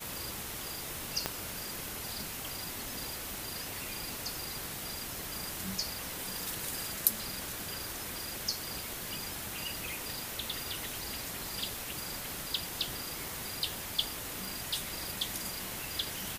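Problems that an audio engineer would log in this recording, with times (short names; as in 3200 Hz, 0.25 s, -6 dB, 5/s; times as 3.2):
1.26 pop -14 dBFS
11.2 pop
14.45 pop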